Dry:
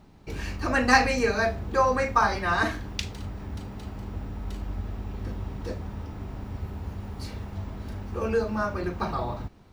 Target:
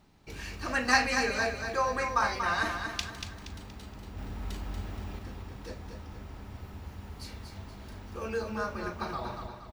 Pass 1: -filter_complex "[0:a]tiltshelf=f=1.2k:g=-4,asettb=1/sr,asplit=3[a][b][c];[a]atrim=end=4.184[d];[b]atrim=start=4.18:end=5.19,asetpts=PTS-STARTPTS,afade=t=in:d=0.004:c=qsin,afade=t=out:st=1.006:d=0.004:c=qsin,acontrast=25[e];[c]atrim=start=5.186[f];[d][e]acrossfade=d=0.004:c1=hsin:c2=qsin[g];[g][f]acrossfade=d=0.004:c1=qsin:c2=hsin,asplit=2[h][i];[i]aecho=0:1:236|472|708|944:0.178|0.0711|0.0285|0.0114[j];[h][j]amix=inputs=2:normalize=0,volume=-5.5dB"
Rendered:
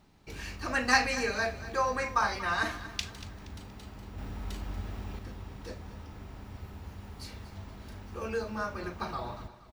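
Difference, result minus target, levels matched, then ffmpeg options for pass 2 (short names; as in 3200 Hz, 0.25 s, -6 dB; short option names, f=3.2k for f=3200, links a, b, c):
echo-to-direct -8.5 dB
-filter_complex "[0:a]tiltshelf=f=1.2k:g=-4,asettb=1/sr,asplit=3[a][b][c];[a]atrim=end=4.184[d];[b]atrim=start=4.18:end=5.19,asetpts=PTS-STARTPTS,afade=t=in:d=0.004:c=qsin,afade=t=out:st=1.006:d=0.004:c=qsin,acontrast=25[e];[c]atrim=start=5.186[f];[d][e]acrossfade=d=0.004:c1=hsin:c2=qsin[g];[g][f]acrossfade=d=0.004:c1=qsin:c2=hsin,asplit=2[h][i];[i]aecho=0:1:236|472|708|944|1180:0.473|0.189|0.0757|0.0303|0.0121[j];[h][j]amix=inputs=2:normalize=0,volume=-5.5dB"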